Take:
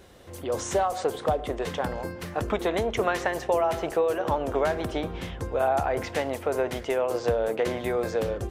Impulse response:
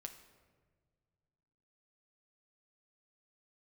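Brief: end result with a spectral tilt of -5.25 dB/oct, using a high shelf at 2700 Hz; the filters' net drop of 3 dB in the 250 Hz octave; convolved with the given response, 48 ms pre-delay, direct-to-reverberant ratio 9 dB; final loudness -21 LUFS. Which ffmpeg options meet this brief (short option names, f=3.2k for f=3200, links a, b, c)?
-filter_complex "[0:a]equalizer=f=250:t=o:g=-4.5,highshelf=f=2.7k:g=-3.5,asplit=2[a][b];[1:a]atrim=start_sample=2205,adelay=48[c];[b][c]afir=irnorm=-1:irlink=0,volume=-4.5dB[d];[a][d]amix=inputs=2:normalize=0,volume=7.5dB"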